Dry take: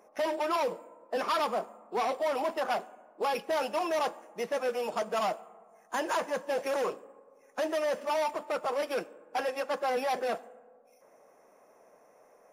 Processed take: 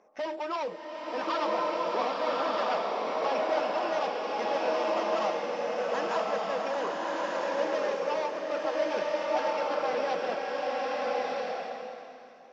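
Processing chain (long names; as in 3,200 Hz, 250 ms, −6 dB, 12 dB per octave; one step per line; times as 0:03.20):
inverse Chebyshev low-pass filter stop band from 12,000 Hz, stop band 50 dB
slow-attack reverb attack 1,280 ms, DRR −4.5 dB
level −3.5 dB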